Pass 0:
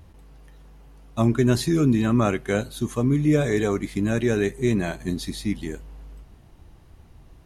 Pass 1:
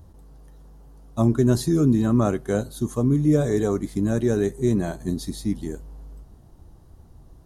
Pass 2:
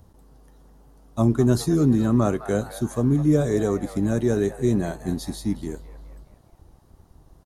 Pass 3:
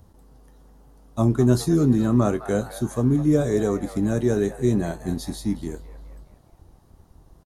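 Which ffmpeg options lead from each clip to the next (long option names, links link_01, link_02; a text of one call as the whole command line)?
ffmpeg -i in.wav -af "equalizer=frequency=2400:width=1.2:gain=-15,volume=1dB" out.wav
ffmpeg -i in.wav -filter_complex "[0:a]acrossover=split=490|3500[link_01][link_02][link_03];[link_01]aeval=exprs='sgn(val(0))*max(abs(val(0))-0.00224,0)':channel_layout=same[link_04];[link_02]asplit=7[link_05][link_06][link_07][link_08][link_09][link_10][link_11];[link_06]adelay=209,afreqshift=72,volume=-10.5dB[link_12];[link_07]adelay=418,afreqshift=144,volume=-16dB[link_13];[link_08]adelay=627,afreqshift=216,volume=-21.5dB[link_14];[link_09]adelay=836,afreqshift=288,volume=-27dB[link_15];[link_10]adelay=1045,afreqshift=360,volume=-32.6dB[link_16];[link_11]adelay=1254,afreqshift=432,volume=-38.1dB[link_17];[link_05][link_12][link_13][link_14][link_15][link_16][link_17]amix=inputs=7:normalize=0[link_18];[link_04][link_18][link_03]amix=inputs=3:normalize=0" out.wav
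ffmpeg -i in.wav -filter_complex "[0:a]asplit=2[link_01][link_02];[link_02]adelay=24,volume=-13.5dB[link_03];[link_01][link_03]amix=inputs=2:normalize=0" out.wav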